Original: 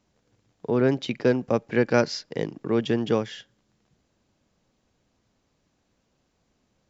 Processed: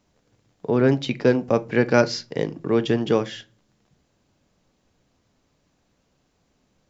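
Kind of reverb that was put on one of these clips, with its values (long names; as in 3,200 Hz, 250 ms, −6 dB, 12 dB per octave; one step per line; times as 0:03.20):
rectangular room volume 130 cubic metres, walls furnished, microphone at 0.34 metres
level +3 dB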